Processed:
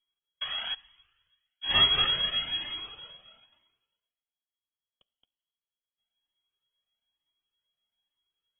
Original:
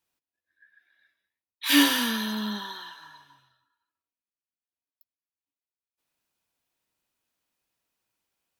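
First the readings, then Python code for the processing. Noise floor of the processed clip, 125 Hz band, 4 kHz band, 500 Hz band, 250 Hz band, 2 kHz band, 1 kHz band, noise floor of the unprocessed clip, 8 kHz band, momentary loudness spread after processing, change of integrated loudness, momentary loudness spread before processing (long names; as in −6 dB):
below −85 dBFS, can't be measured, +4.0 dB, −3.5 dB, −23.0 dB, −5.0 dB, −3.5 dB, below −85 dBFS, below −40 dB, 17 LU, −2.5 dB, 20 LU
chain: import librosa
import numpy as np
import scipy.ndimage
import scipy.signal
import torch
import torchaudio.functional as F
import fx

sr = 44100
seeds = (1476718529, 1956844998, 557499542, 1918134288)

y = x + 10.0 ** (-5.0 / 20.0) * np.pad(x, (int(222 * sr / 1000.0), 0))[:len(x)]
y = fx.spec_paint(y, sr, seeds[0], shape='noise', start_s=0.41, length_s=0.34, low_hz=370.0, high_hz=1400.0, level_db=-31.0)
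y = np.abs(y)
y = fx.rev_plate(y, sr, seeds[1], rt60_s=1.7, hf_ratio=0.65, predelay_ms=0, drr_db=20.0)
y = fx.freq_invert(y, sr, carrier_hz=3300)
y = fx.comb_cascade(y, sr, direction='rising', hz=1.1)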